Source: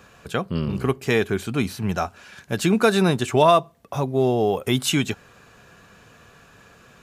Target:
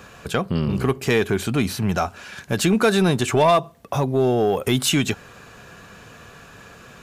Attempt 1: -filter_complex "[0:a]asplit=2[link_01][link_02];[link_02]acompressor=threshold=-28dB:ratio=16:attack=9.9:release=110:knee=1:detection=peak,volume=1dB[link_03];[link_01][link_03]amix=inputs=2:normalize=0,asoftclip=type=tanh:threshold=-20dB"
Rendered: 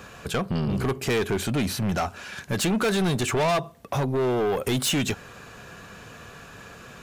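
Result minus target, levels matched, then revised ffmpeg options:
soft clipping: distortion +11 dB
-filter_complex "[0:a]asplit=2[link_01][link_02];[link_02]acompressor=threshold=-28dB:ratio=16:attack=9.9:release=110:knee=1:detection=peak,volume=1dB[link_03];[link_01][link_03]amix=inputs=2:normalize=0,asoftclip=type=tanh:threshold=-8.5dB"

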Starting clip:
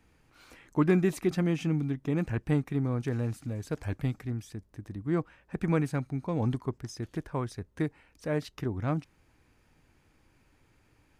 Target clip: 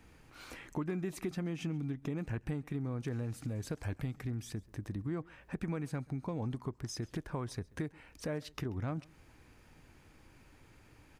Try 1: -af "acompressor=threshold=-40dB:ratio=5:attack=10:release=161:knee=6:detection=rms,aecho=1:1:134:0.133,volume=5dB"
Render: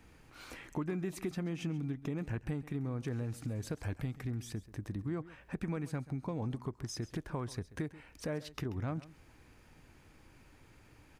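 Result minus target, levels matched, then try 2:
echo-to-direct +7 dB
-af "acompressor=threshold=-40dB:ratio=5:attack=10:release=161:knee=6:detection=rms,aecho=1:1:134:0.0596,volume=5dB"

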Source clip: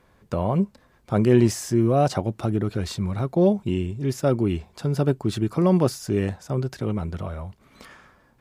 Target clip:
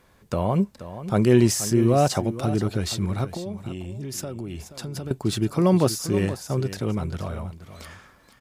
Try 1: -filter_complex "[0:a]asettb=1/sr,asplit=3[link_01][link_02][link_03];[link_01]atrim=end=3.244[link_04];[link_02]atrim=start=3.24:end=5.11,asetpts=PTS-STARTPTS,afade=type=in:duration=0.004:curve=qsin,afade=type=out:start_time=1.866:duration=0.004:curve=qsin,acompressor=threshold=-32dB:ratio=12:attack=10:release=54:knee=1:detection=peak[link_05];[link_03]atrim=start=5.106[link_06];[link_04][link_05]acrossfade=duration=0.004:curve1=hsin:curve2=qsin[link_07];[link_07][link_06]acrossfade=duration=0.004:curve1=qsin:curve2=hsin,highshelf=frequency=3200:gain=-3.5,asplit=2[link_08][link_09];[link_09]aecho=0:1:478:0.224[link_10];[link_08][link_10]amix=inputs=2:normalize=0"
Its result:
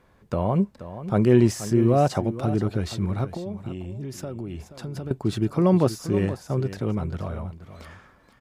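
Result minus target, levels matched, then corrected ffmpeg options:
8,000 Hz band −9.0 dB
-filter_complex "[0:a]asettb=1/sr,asplit=3[link_01][link_02][link_03];[link_01]atrim=end=3.244[link_04];[link_02]atrim=start=3.24:end=5.11,asetpts=PTS-STARTPTS,afade=type=in:duration=0.004:curve=qsin,afade=type=out:start_time=1.866:duration=0.004:curve=qsin,acompressor=threshold=-32dB:ratio=12:attack=10:release=54:knee=1:detection=peak[link_05];[link_03]atrim=start=5.106[link_06];[link_04][link_05]acrossfade=duration=0.004:curve1=hsin:curve2=qsin[link_07];[link_07][link_06]acrossfade=duration=0.004:curve1=qsin:curve2=hsin,highshelf=frequency=3200:gain=7.5,asplit=2[link_08][link_09];[link_09]aecho=0:1:478:0.224[link_10];[link_08][link_10]amix=inputs=2:normalize=0"

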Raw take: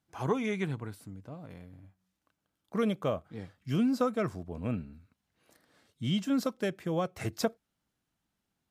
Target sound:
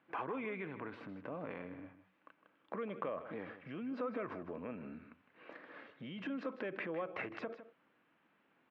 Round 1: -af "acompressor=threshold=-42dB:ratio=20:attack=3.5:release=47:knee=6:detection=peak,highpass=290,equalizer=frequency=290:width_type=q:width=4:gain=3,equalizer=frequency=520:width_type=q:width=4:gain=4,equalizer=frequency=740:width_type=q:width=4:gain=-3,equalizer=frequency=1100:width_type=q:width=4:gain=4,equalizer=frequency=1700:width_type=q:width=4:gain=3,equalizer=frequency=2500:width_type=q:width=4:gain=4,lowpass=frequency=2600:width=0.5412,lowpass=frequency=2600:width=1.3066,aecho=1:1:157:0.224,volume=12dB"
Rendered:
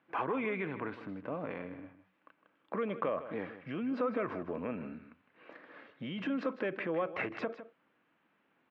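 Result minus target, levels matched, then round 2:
downward compressor: peak gain reduction −6.5 dB
-af "acompressor=threshold=-49dB:ratio=20:attack=3.5:release=47:knee=6:detection=peak,highpass=290,equalizer=frequency=290:width_type=q:width=4:gain=3,equalizer=frequency=520:width_type=q:width=4:gain=4,equalizer=frequency=740:width_type=q:width=4:gain=-3,equalizer=frequency=1100:width_type=q:width=4:gain=4,equalizer=frequency=1700:width_type=q:width=4:gain=3,equalizer=frequency=2500:width_type=q:width=4:gain=4,lowpass=frequency=2600:width=0.5412,lowpass=frequency=2600:width=1.3066,aecho=1:1:157:0.224,volume=12dB"

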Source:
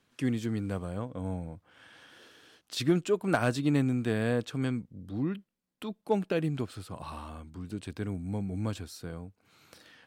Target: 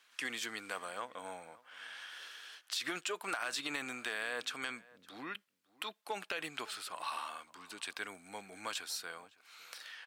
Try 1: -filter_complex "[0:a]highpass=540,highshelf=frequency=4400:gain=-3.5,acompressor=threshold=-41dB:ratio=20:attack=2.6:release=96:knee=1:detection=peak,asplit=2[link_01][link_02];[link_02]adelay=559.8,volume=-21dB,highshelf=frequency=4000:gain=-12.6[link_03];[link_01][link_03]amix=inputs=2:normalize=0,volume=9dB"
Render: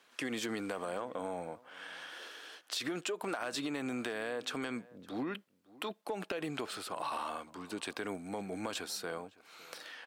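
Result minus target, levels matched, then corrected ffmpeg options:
500 Hz band +6.0 dB
-filter_complex "[0:a]highpass=1300,highshelf=frequency=4400:gain=-3.5,acompressor=threshold=-41dB:ratio=20:attack=2.6:release=96:knee=1:detection=peak,asplit=2[link_01][link_02];[link_02]adelay=559.8,volume=-21dB,highshelf=frequency=4000:gain=-12.6[link_03];[link_01][link_03]amix=inputs=2:normalize=0,volume=9dB"

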